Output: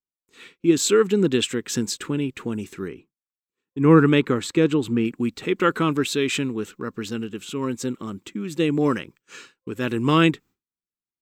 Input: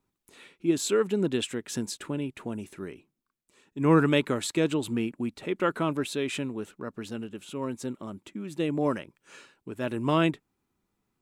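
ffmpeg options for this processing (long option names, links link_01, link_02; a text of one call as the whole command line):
ffmpeg -i in.wav -af "asetnsamples=nb_out_samples=441:pad=0,asendcmd='2.88 highshelf g -7.5;5.05 highshelf g 3.5',highshelf=frequency=2700:gain=2,agate=range=-33dB:threshold=-48dB:ratio=3:detection=peak,superequalizer=8b=0.316:9b=0.562:16b=0.355,volume=7dB" out.wav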